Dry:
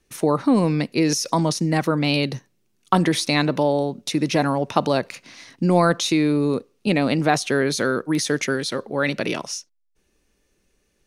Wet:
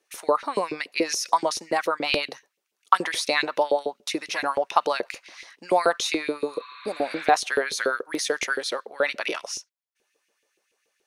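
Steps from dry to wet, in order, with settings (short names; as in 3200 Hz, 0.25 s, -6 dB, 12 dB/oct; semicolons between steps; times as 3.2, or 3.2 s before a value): LFO high-pass saw up 7 Hz 380–2900 Hz; spectral repair 6.51–7.22, 950–4500 Hz both; gain -3.5 dB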